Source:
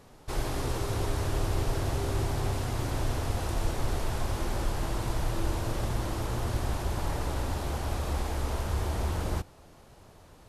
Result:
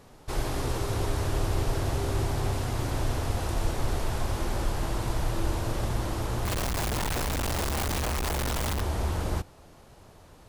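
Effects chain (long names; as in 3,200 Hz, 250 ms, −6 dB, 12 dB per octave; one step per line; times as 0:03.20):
0:06.45–0:08.81: sign of each sample alone
level +1.5 dB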